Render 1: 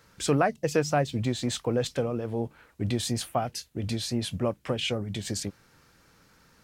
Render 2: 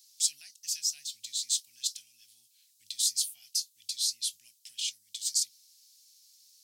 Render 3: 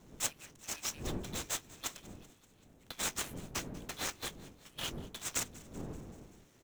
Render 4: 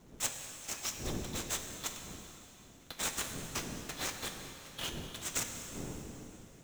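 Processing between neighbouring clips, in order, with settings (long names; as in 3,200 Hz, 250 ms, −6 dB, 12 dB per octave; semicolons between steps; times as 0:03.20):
inverse Chebyshev high-pass filter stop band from 1,300 Hz, stop band 60 dB; level +8 dB
running median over 9 samples; wind on the microphone 290 Hz −50 dBFS; echo with shifted repeats 192 ms, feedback 63%, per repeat +35 Hz, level −20.5 dB; level +1.5 dB
convolution reverb RT60 3.3 s, pre-delay 6 ms, DRR 5 dB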